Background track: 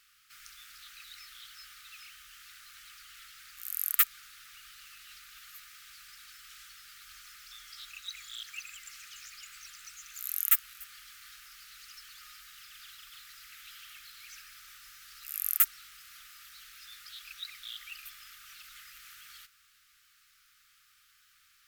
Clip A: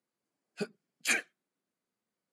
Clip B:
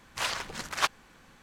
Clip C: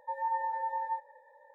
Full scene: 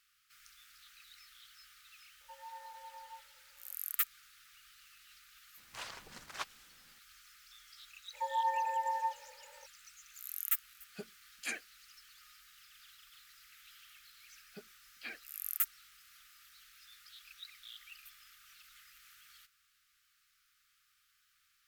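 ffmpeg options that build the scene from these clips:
-filter_complex "[3:a]asplit=2[s0][s1];[1:a]asplit=2[s2][s3];[0:a]volume=0.376[s4];[s3]aresample=11025,aresample=44100[s5];[s0]atrim=end=1.54,asetpts=PTS-STARTPTS,volume=0.133,afade=t=in:d=0.004:c=hsin,afade=t=out:st=1.536:d=0.004:c=hsin,adelay=2210[s6];[2:a]atrim=end=1.42,asetpts=PTS-STARTPTS,volume=0.188,afade=t=in:d=0.004:c=hsin,afade=t=out:st=1.416:d=0.004:c=hsin,adelay=245637S[s7];[s1]atrim=end=1.54,asetpts=PTS-STARTPTS,volume=0.944,afade=t=in:d=0.02,afade=t=out:st=1.52:d=0.02,adelay=8130[s8];[s2]atrim=end=2.32,asetpts=PTS-STARTPTS,volume=0.299,afade=t=in:d=0.004:c=hsin,afade=t=out:st=2.316:d=0.004:c=hsin,adelay=10380[s9];[s5]atrim=end=2.32,asetpts=PTS-STARTPTS,volume=0.158,afade=t=in:d=0.004:c=hsin,afade=t=out:st=2.316:d=0.004:c=hsin,adelay=615636S[s10];[s4][s6][s7][s8][s9][s10]amix=inputs=6:normalize=0"

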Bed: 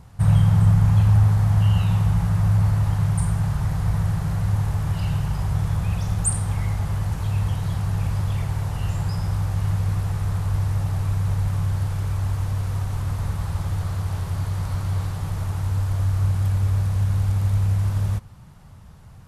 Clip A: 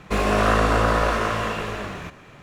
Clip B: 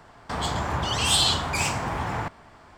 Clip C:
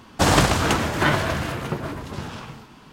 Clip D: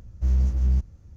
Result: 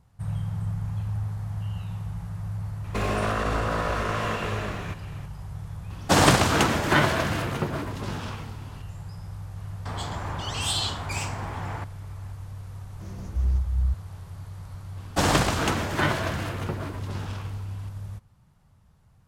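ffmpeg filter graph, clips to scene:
-filter_complex "[3:a]asplit=2[s0][s1];[0:a]volume=0.2[s2];[1:a]alimiter=limit=0.15:level=0:latency=1:release=97[s3];[s0]highpass=80[s4];[4:a]acrossover=split=150[s5][s6];[s5]adelay=350[s7];[s7][s6]amix=inputs=2:normalize=0[s8];[s3]atrim=end=2.42,asetpts=PTS-STARTPTS,volume=0.841,afade=t=in:d=0.004:c=hsin,afade=t=out:st=2.416:d=0.004:c=hsin,adelay=2840[s9];[s4]atrim=end=2.92,asetpts=PTS-STARTPTS,volume=0.944,afade=t=in:d=0.004:c=hsin,afade=t=out:st=2.916:d=0.004:c=hsin,adelay=5900[s10];[2:a]atrim=end=2.77,asetpts=PTS-STARTPTS,volume=0.473,afade=t=in:d=0.004:c=hsin,afade=t=out:st=2.766:d=0.004:c=hsin,adelay=9560[s11];[s8]atrim=end=1.16,asetpts=PTS-STARTPTS,volume=0.75,afade=t=in:d=0.004:c=hsin,afade=t=out:st=1.156:d=0.004:c=hsin,adelay=12780[s12];[s1]atrim=end=2.92,asetpts=PTS-STARTPTS,volume=0.596,afade=t=in:d=0.004:c=hsin,afade=t=out:st=2.916:d=0.004:c=hsin,adelay=14970[s13];[s2][s9][s10][s11][s12][s13]amix=inputs=6:normalize=0"

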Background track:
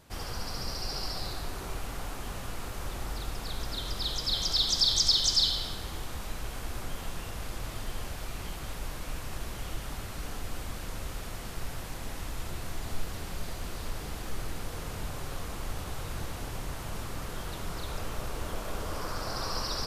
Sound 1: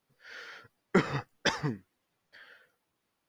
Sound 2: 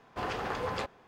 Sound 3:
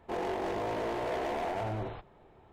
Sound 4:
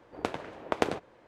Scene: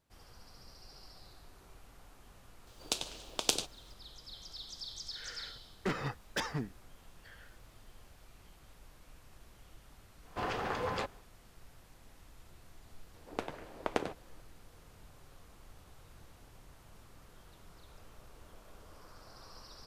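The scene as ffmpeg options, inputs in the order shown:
-filter_complex "[4:a]asplit=2[s0][s1];[0:a]volume=0.1[s2];[s0]aexciter=amount=11.8:drive=7.9:freq=3000[s3];[1:a]asoftclip=type=hard:threshold=0.0531[s4];[s3]atrim=end=1.27,asetpts=PTS-STARTPTS,volume=0.299,afade=t=in:d=0.004:c=hsin,afade=t=out:st=1.266:d=0.004:c=hsin,adelay=2670[s5];[s4]atrim=end=3.28,asetpts=PTS-STARTPTS,volume=0.668,afade=t=in:d=0.004:c=hsin,afade=t=out:st=3.276:d=0.004:c=hsin,adelay=4910[s6];[2:a]atrim=end=1.07,asetpts=PTS-STARTPTS,volume=0.841,afade=t=in:d=0.1,afade=t=out:st=0.97:d=0.1,adelay=10200[s7];[s1]atrim=end=1.27,asetpts=PTS-STARTPTS,volume=0.501,afade=t=in:d=0.004:c=hsin,afade=t=out:st=1.266:d=0.004:c=hsin,adelay=13140[s8];[s2][s5][s6][s7][s8]amix=inputs=5:normalize=0"

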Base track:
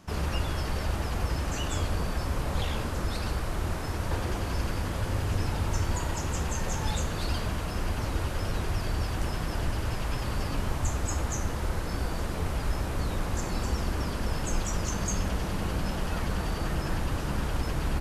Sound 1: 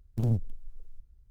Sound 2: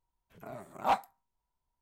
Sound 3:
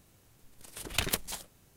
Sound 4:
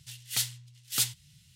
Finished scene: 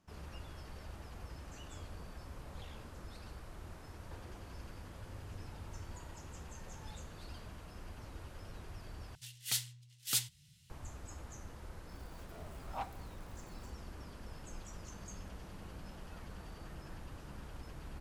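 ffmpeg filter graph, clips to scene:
-filter_complex "[0:a]volume=0.112[s0];[2:a]aeval=exprs='val(0)+0.5*0.00891*sgn(val(0))':c=same[s1];[s0]asplit=2[s2][s3];[s2]atrim=end=9.154[s4];[4:a]atrim=end=1.55,asetpts=PTS-STARTPTS,volume=0.531[s5];[s3]atrim=start=10.696[s6];[s1]atrim=end=1.81,asetpts=PTS-STARTPTS,volume=0.188,afade=t=in:d=0.004:c=hsin,afade=t=out:st=1.806:d=0.004:c=hsin,adelay=11890[s7];[s4][s5]acrossfade=d=0.004:c1=hsin:c2=hsin[s8];[s8][s6]acrossfade=d=0.004:c1=hsin:c2=hsin[s9];[s9][s7]amix=inputs=2:normalize=0"

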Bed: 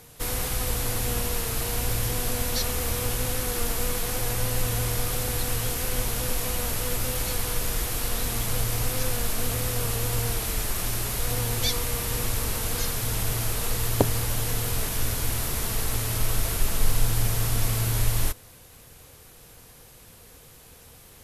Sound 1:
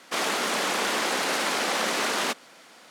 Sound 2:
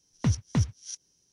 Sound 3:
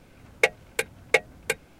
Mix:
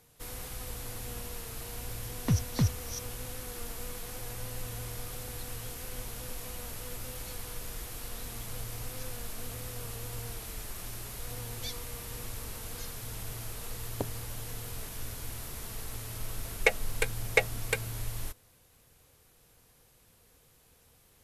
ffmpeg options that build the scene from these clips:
-filter_complex "[0:a]volume=0.224[s0];[2:a]atrim=end=1.32,asetpts=PTS-STARTPTS,volume=0.794,afade=t=in:d=0.004:c=hsin,afade=t=out:st=1.316:d=0.004:c=hsin,adelay=2040[s1];[3:a]atrim=end=1.79,asetpts=PTS-STARTPTS,volume=0.631,afade=t=in:d=0.004:c=hsin,afade=t=out:st=1.786:d=0.004:c=hsin,adelay=16230[s2];[s0][s1][s2]amix=inputs=3:normalize=0"

